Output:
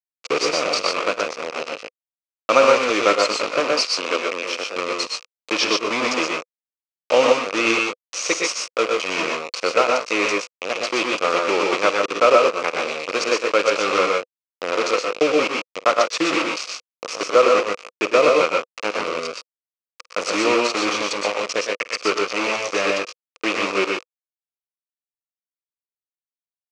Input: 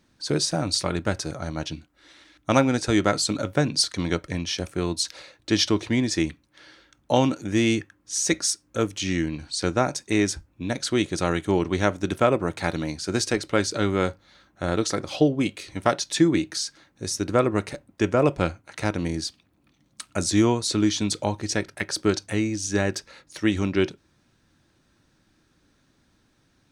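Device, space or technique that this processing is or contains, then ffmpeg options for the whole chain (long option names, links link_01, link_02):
hand-held game console: -filter_complex "[0:a]acrusher=bits=3:mix=0:aa=0.000001,highpass=460,equalizer=frequency=500:width_type=q:width=4:gain=10,equalizer=frequency=820:width_type=q:width=4:gain=-5,equalizer=frequency=1200:width_type=q:width=4:gain=9,equalizer=frequency=1700:width_type=q:width=4:gain=-6,equalizer=frequency=2500:width_type=q:width=4:gain=9,equalizer=frequency=3600:width_type=q:width=4:gain=-4,lowpass=frequency=6000:width=0.5412,lowpass=frequency=6000:width=1.3066,asettb=1/sr,asplit=3[link_01][link_02][link_03];[link_01]atrim=end=3.604[link_04];[link_02]atrim=start=3.6:end=4.74,asetpts=PTS-STARTPTS,afade=type=in:duration=0.004:curve=qsin,afade=type=out:start_time=1.136:duration=0.004:curve=qsin,highpass=frequency=200:width=0.5412,highpass=frequency=200:width=1.3066[link_05];[link_03]atrim=start=4.736[link_06];[link_04][link_05]acrossfade=duration=0.004:curve1=hsin:curve2=qsin[link_07];[link_07][link_06]acrossfade=duration=0.004:curve1=qsin:curve2=hsin,aecho=1:1:50|105|122|142:0.133|0.335|0.668|0.447,volume=1.5dB"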